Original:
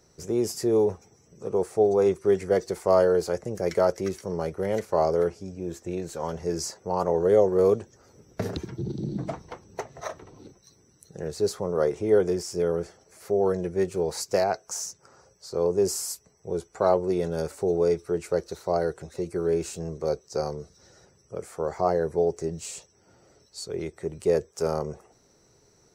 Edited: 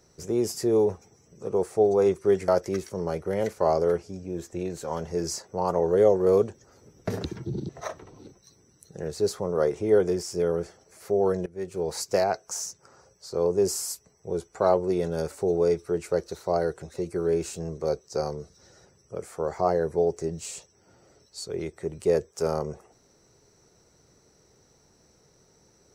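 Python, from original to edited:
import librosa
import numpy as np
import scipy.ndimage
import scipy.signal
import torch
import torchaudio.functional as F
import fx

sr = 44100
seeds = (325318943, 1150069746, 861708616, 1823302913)

y = fx.edit(x, sr, fx.cut(start_s=2.48, length_s=1.32),
    fx.cut(start_s=9.01, length_s=0.88),
    fx.fade_in_from(start_s=13.66, length_s=0.5, floor_db=-20.0), tone=tone)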